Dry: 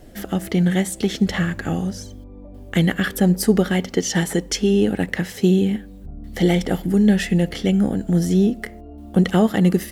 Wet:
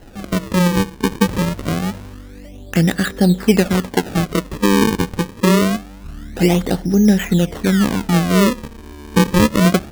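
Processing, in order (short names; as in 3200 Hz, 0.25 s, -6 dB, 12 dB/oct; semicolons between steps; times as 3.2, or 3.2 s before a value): Gaussian blur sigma 2 samples; decimation with a swept rate 37×, swing 160% 0.25 Hz; gain +3 dB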